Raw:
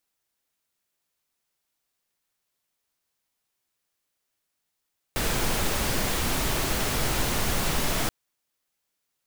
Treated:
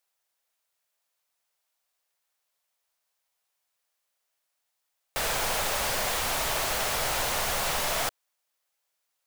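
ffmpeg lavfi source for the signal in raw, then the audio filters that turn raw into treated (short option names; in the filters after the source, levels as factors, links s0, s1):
-f lavfi -i "anoisesrc=c=pink:a=0.272:d=2.93:r=44100:seed=1"
-af "lowshelf=f=430:t=q:w=1.5:g=-10"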